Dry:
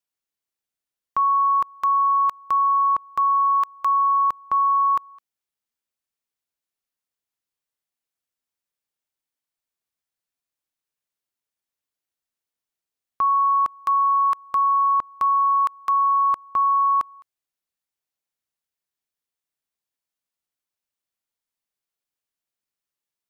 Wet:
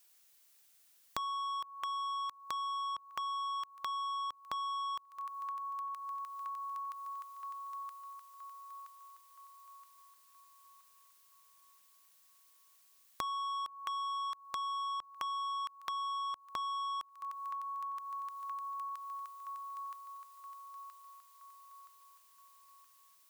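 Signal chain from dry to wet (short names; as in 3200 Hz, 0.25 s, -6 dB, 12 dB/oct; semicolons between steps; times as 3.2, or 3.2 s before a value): tilt +2.5 dB/oct; thin delay 0.972 s, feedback 47%, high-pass 1600 Hz, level -21.5 dB; soft clip -25 dBFS, distortion -12 dB; compressor 10:1, threshold -53 dBFS, peak gain reduction 25 dB; gain +14 dB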